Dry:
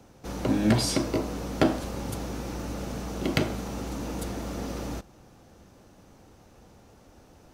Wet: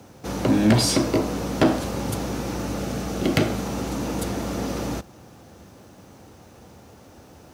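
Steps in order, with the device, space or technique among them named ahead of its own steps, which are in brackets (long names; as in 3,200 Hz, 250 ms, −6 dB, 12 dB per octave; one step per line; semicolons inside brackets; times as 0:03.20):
open-reel tape (soft clipping −16.5 dBFS, distortion −15 dB; parametric band 74 Hz +4 dB 0.9 octaves; white noise bed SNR 43 dB)
0:02.79–0:03.52: notch filter 970 Hz, Q 7.2
high-pass filter 87 Hz 12 dB per octave
level +7 dB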